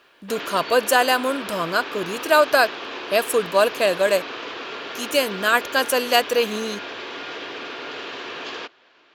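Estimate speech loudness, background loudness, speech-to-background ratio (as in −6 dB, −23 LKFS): −20.5 LKFS, −32.0 LKFS, 11.5 dB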